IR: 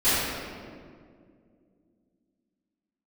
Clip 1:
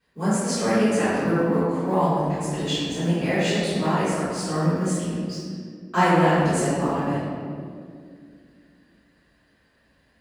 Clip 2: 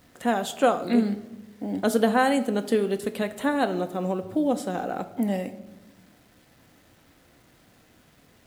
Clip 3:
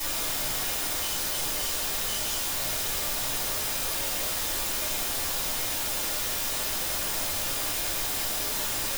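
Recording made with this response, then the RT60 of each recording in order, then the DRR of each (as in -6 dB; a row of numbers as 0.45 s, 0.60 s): 1; 2.2 s, 1.1 s, 0.50 s; -19.5 dB, 8.5 dB, -10.0 dB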